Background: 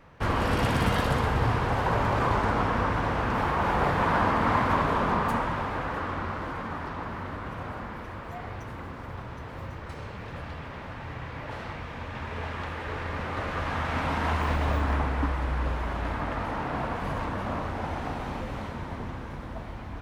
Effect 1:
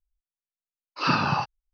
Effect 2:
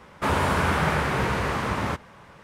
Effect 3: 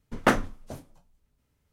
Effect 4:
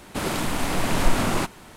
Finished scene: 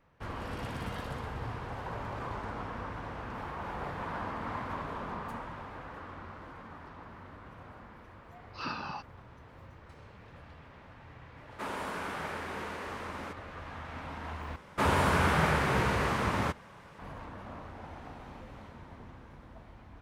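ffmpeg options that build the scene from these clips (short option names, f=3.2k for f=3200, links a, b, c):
-filter_complex "[2:a]asplit=2[a][b];[0:a]volume=-13.5dB[c];[1:a]highpass=190[d];[a]highpass=f=200:w=0.5412,highpass=f=200:w=1.3066[e];[c]asplit=2[f][g];[f]atrim=end=14.564[h];[b]atrim=end=2.43,asetpts=PTS-STARTPTS,volume=-3.5dB[i];[g]atrim=start=16.986[j];[d]atrim=end=1.73,asetpts=PTS-STARTPTS,volume=-14dB,afade=t=in:d=0.004:c=hsin,afade=t=out:st=1.726:d=0.004:c=hsin,adelay=7570[k];[e]atrim=end=2.43,asetpts=PTS-STARTPTS,volume=-13.5dB,afade=t=in:d=0.004:c=hsin,afade=t=out:st=2.426:d=0.004:c=hsin,adelay=11370[l];[h][i]acrossfade=d=0.004:c1=hsin:c2=hsin[m];[m][j]acrossfade=d=0.004:c1=hsin:c2=hsin[n];[n][k][l]amix=inputs=3:normalize=0"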